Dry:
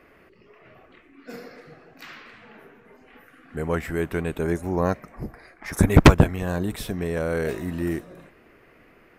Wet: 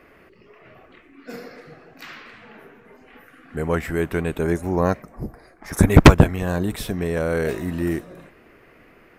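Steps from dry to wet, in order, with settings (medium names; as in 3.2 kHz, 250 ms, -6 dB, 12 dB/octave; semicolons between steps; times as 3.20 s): 5.02–5.71 s: peaking EQ 2.4 kHz -10 dB 1.7 oct; trim +3 dB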